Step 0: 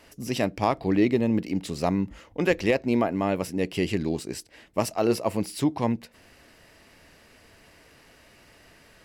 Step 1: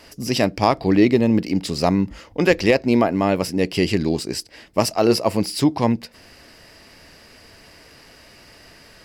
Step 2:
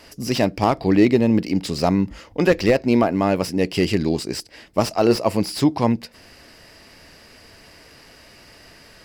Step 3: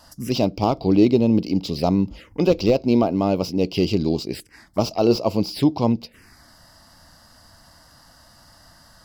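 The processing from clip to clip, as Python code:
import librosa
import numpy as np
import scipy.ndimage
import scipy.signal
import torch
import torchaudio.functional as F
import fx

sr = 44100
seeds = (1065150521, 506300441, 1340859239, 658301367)

y1 = fx.peak_eq(x, sr, hz=4900.0, db=8.5, octaves=0.3)
y1 = y1 * librosa.db_to_amplitude(6.5)
y2 = fx.slew_limit(y1, sr, full_power_hz=290.0)
y3 = fx.env_phaser(y2, sr, low_hz=380.0, high_hz=1800.0, full_db=-19.0)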